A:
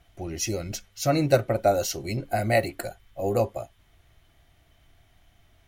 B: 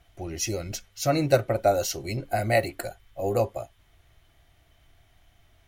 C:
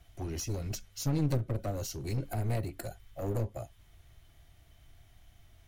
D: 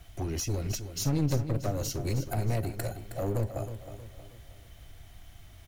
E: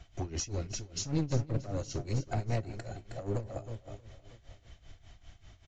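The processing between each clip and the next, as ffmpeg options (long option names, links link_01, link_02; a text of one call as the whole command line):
ffmpeg -i in.wav -af "equalizer=frequency=210:width=1.5:gain=-3.5" out.wav
ffmpeg -i in.wav -filter_complex "[0:a]bass=frequency=250:gain=6,treble=frequency=4000:gain=5,acrossover=split=330[link_01][link_02];[link_02]acompressor=threshold=-33dB:ratio=10[link_03];[link_01][link_03]amix=inputs=2:normalize=0,aeval=exprs='clip(val(0),-1,0.0299)':channel_layout=same,volume=-3.5dB" out.wav
ffmpeg -i in.wav -filter_complex "[0:a]asplit=2[link_01][link_02];[link_02]acompressor=threshold=-41dB:ratio=6,volume=3dB[link_03];[link_01][link_03]amix=inputs=2:normalize=0,acrusher=bits=10:mix=0:aa=0.000001,aecho=1:1:316|632|948|1264|1580:0.299|0.128|0.0552|0.0237|0.0102" out.wav
ffmpeg -i in.wav -af "tremolo=f=5.1:d=0.82,aresample=16000,aresample=44100" -ar 32000 -c:a libmp3lame -b:a 48k out.mp3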